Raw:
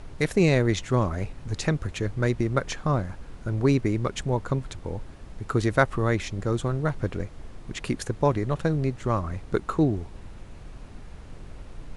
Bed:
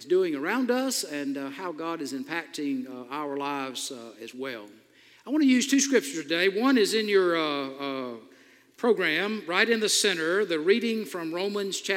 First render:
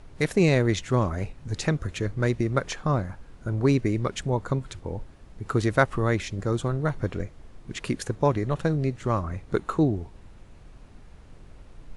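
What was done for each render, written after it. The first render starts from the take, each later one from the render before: noise print and reduce 6 dB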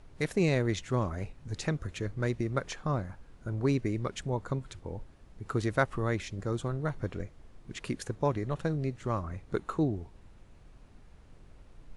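gain -6.5 dB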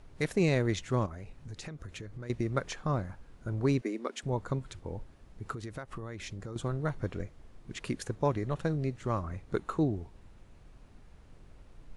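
1.06–2.3 compressor, threshold -39 dBFS; 3.81–4.23 elliptic high-pass 230 Hz; 5.52–6.56 compressor 10:1, threshold -36 dBFS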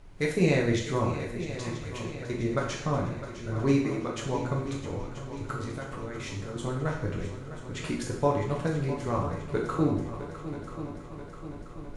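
multi-head echo 0.328 s, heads second and third, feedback 62%, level -13 dB; plate-style reverb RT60 0.67 s, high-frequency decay 1×, DRR -2 dB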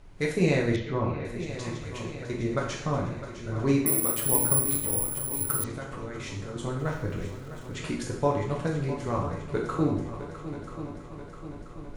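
0.76–1.25 air absorption 270 m; 3.86–5.64 careless resampling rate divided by 4×, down filtered, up zero stuff; 6.79–7.75 sample gate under -49.5 dBFS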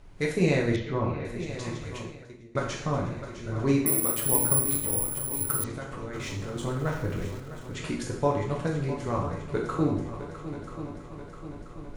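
1.95–2.55 fade out quadratic, to -23 dB; 6.13–7.4 G.711 law mismatch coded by mu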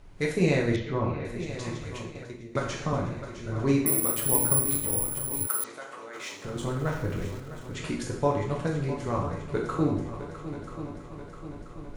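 2.15–2.93 three-band squash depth 40%; 5.47–6.45 HPF 530 Hz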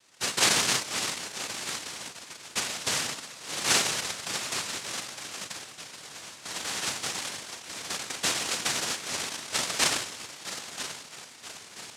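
rotary speaker horn 1 Hz; noise vocoder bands 1

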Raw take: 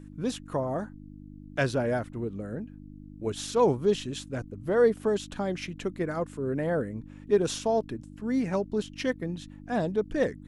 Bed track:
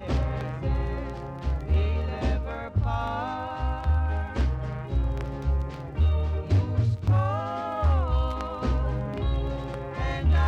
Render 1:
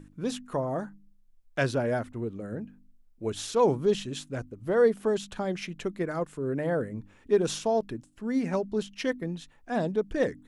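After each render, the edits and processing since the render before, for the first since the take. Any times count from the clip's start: de-hum 50 Hz, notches 6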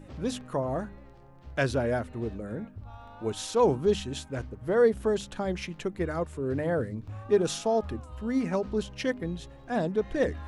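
add bed track -18.5 dB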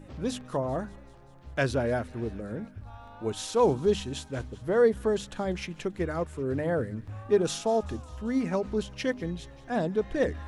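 thin delay 0.194 s, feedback 69%, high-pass 1600 Hz, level -19.5 dB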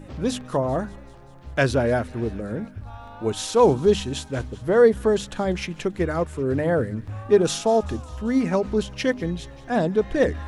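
gain +6.5 dB

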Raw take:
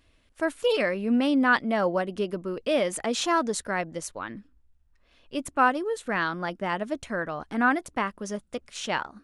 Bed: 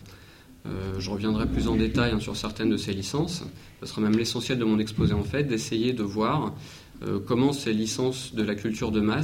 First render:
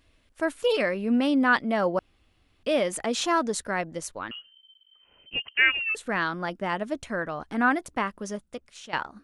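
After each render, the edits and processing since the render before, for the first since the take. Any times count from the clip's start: 1.99–2.63 room tone; 4.31–5.95 inverted band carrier 3100 Hz; 8.23–8.93 fade out, to -14 dB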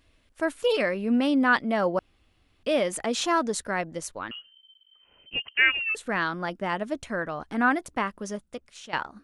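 nothing audible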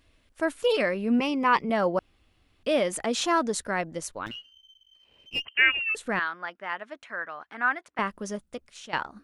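1.19–1.7 ripple EQ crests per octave 0.78, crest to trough 13 dB; 4.26–5.45 minimum comb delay 0.34 ms; 6.19–7.99 band-pass 1700 Hz, Q 1.1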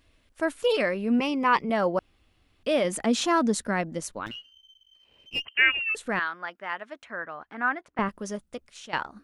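2.84–4.2 bell 220 Hz +8.5 dB; 7.05–8.09 tilt -2.5 dB/oct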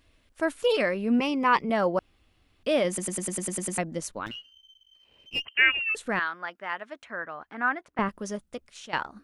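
2.88 stutter in place 0.10 s, 9 plays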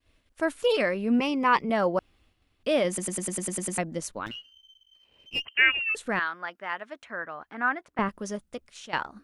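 expander -59 dBFS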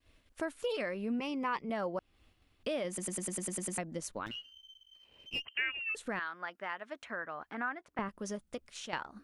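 compressor 2.5:1, threshold -38 dBFS, peak gain reduction 15 dB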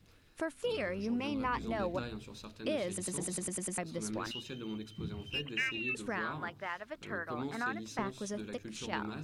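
add bed -17.5 dB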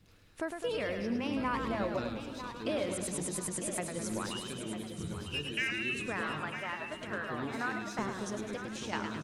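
feedback echo 0.951 s, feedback 38%, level -10.5 dB; warbling echo 0.105 s, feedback 58%, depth 116 cents, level -6.5 dB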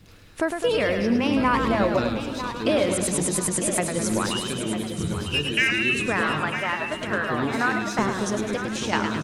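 gain +12 dB

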